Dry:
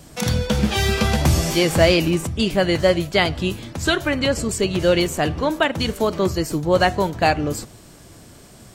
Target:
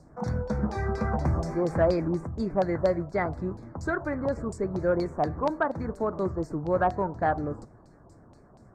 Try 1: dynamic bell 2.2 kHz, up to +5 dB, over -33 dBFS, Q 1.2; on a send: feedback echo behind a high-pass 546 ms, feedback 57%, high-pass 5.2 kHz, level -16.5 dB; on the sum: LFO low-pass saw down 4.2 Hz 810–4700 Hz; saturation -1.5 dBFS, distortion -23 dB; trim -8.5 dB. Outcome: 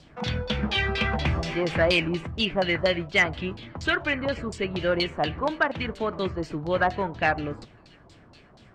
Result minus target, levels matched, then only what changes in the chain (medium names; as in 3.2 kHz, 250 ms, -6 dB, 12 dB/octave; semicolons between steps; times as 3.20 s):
4 kHz band +20.0 dB
add after dynamic bell: Butterworth band-stop 3 kHz, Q 0.51